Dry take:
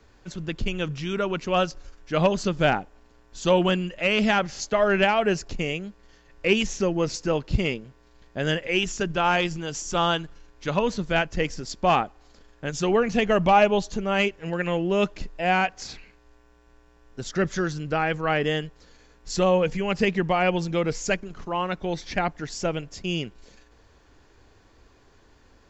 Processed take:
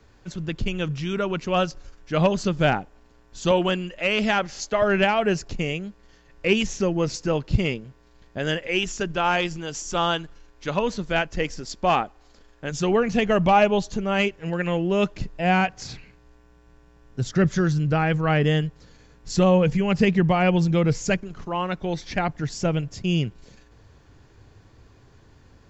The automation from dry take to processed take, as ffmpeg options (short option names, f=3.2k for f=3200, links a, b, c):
-af "asetnsamples=n=441:p=0,asendcmd='3.51 equalizer g -4.5;4.82 equalizer g 4.5;8.38 equalizer g -2;12.71 equalizer g 5;15.16 equalizer g 13.5;21.17 equalizer g 5;22.29 equalizer g 12.5',equalizer=f=120:t=o:w=1.4:g=4.5"